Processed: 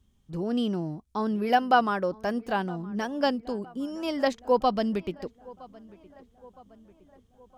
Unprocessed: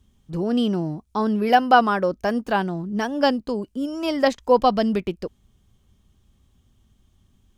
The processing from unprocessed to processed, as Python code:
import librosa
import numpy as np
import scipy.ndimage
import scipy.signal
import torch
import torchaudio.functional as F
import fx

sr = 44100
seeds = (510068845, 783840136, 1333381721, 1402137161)

y = fx.echo_filtered(x, sr, ms=964, feedback_pct=55, hz=2500.0, wet_db=-22)
y = F.gain(torch.from_numpy(y), -6.0).numpy()